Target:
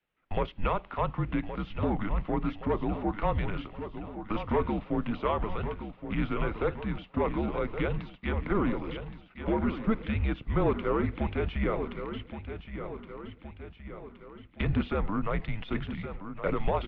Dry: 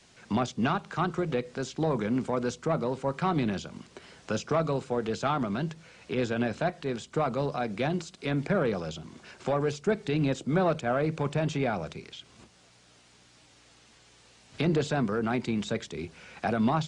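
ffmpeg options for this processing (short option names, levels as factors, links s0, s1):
-af "agate=range=0.0794:threshold=0.00562:ratio=16:detection=peak,aecho=1:1:1120|2240|3360|4480|5600|6720:0.316|0.168|0.0888|0.0471|0.025|0.0132,highpass=f=180:t=q:w=0.5412,highpass=f=180:t=q:w=1.307,lowpass=f=3300:t=q:w=0.5176,lowpass=f=3300:t=q:w=0.7071,lowpass=f=3300:t=q:w=1.932,afreqshift=-210"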